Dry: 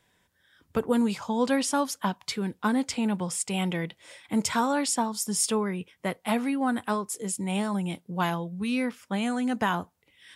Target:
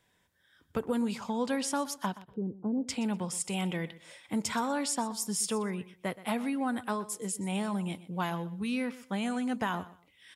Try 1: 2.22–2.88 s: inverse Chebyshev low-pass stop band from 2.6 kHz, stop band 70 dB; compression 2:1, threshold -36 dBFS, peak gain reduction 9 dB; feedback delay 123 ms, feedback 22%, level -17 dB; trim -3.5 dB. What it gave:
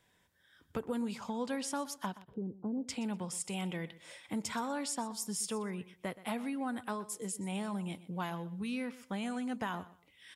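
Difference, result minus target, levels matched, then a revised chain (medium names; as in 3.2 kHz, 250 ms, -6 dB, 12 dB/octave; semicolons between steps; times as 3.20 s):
compression: peak gain reduction +5.5 dB
2.22–2.88 s: inverse Chebyshev low-pass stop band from 2.6 kHz, stop band 70 dB; compression 2:1, threshold -25 dBFS, peak gain reduction 3.5 dB; feedback delay 123 ms, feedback 22%, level -17 dB; trim -3.5 dB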